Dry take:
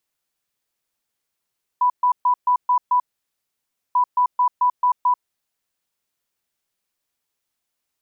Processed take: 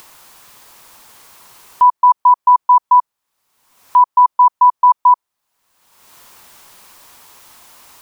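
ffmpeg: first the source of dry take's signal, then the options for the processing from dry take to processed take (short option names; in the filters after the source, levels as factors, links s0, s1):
-f lavfi -i "aevalsrc='0.211*sin(2*PI*990*t)*clip(min(mod(mod(t,2.14),0.22),0.09-mod(mod(t,2.14),0.22))/0.005,0,1)*lt(mod(t,2.14),1.32)':d=4.28:s=44100"
-af "equalizer=f=1000:t=o:w=0.78:g=9.5,acompressor=mode=upward:threshold=0.141:ratio=2.5"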